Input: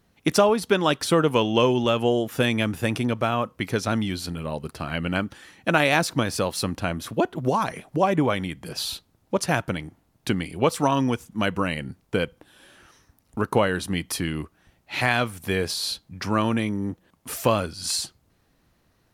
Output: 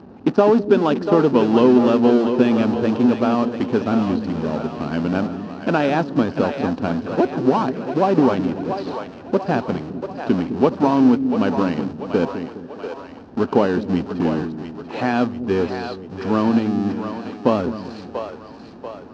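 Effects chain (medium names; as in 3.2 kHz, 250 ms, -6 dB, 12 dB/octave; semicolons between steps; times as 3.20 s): jump at every zero crossing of -21 dBFS; de-esser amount 45%; hysteresis with a dead band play -22.5 dBFS; cabinet simulation 100–5100 Hz, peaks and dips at 120 Hz -6 dB, 250 Hz +10 dB, 400 Hz +6 dB, 820 Hz +4 dB, 2.1 kHz -9 dB, 3.4 kHz -6 dB; on a send: two-band feedback delay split 400 Hz, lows 206 ms, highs 689 ms, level -8 dB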